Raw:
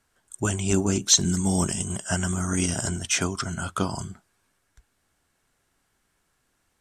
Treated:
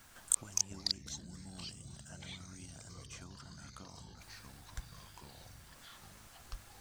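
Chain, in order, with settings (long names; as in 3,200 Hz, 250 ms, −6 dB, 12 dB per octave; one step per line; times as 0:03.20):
mu-law and A-law mismatch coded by A
parametric band 420 Hz −8 dB 0.42 octaves
in parallel at −1 dB: compressor whose output falls as the input rises −37 dBFS, ratio −1
on the sum: gate with flip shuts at −19 dBFS, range −37 dB
delay with pitch and tempo change per echo 149 ms, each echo −5 semitones, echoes 2
level +9 dB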